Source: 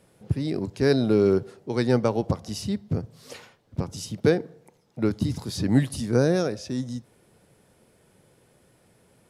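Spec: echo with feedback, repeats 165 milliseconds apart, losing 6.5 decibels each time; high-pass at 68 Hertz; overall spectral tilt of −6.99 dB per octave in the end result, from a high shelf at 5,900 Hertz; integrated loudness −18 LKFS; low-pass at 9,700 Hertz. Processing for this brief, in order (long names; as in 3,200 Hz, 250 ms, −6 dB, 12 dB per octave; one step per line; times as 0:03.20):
high-pass filter 68 Hz
low-pass filter 9,700 Hz
high-shelf EQ 5,900 Hz −6 dB
repeating echo 165 ms, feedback 47%, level −6.5 dB
level +7 dB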